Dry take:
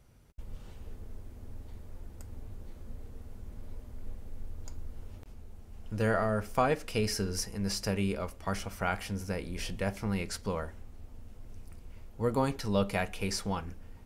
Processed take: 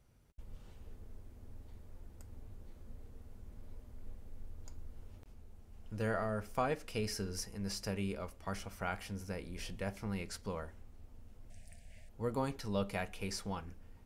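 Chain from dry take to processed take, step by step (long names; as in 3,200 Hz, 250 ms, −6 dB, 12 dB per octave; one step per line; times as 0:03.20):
0:11.50–0:12.09: drawn EQ curve 230 Hz 0 dB, 350 Hz −18 dB, 660 Hz +10 dB, 1,200 Hz −23 dB, 1,700 Hz +10 dB, 3,700 Hz +6 dB, 6,000 Hz +7 dB, 8,600 Hz +13 dB, 12,000 Hz 0 dB
level −7 dB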